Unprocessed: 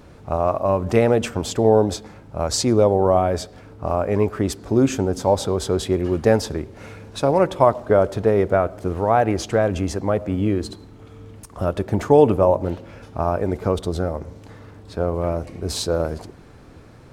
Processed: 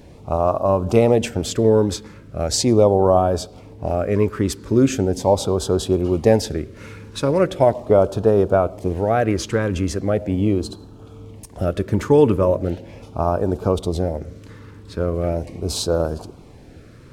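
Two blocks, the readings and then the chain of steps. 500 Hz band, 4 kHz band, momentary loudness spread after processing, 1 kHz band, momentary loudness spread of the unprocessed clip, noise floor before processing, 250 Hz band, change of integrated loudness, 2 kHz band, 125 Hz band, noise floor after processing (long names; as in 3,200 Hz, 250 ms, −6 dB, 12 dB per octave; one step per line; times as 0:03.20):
+1.0 dB, +1.5 dB, 13 LU, −1.5 dB, 12 LU, −45 dBFS, +2.0 dB, +1.0 dB, −1.0 dB, +2.0 dB, −43 dBFS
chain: auto-filter notch sine 0.39 Hz 680–2,100 Hz
level +2 dB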